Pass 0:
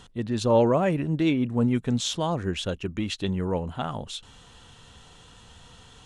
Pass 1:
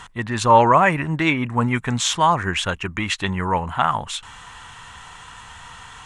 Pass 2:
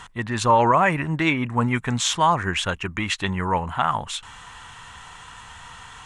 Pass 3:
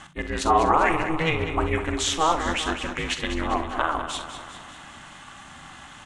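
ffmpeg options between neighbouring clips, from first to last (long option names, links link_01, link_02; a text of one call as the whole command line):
ffmpeg -i in.wav -af "equalizer=frequency=250:width_type=o:width=1:gain=-4,equalizer=frequency=500:width_type=o:width=1:gain=-6,equalizer=frequency=1000:width_type=o:width=1:gain=12,equalizer=frequency=2000:width_type=o:width=1:gain=11,equalizer=frequency=4000:width_type=o:width=1:gain=-3,equalizer=frequency=8000:width_type=o:width=1:gain=6,volume=4.5dB" out.wav
ffmpeg -i in.wav -af "alimiter=level_in=5dB:limit=-1dB:release=50:level=0:latency=1,volume=-6.5dB" out.wav
ffmpeg -i in.wav -filter_complex "[0:a]asplit=2[link_01][link_02];[link_02]aecho=0:1:44|64:0.251|0.211[link_03];[link_01][link_03]amix=inputs=2:normalize=0,aeval=exprs='val(0)*sin(2*PI*160*n/s)':channel_layout=same,asplit=2[link_04][link_05];[link_05]aecho=0:1:199|398|597|796|995|1194|1393:0.316|0.18|0.103|0.0586|0.0334|0.019|0.0108[link_06];[link_04][link_06]amix=inputs=2:normalize=0" out.wav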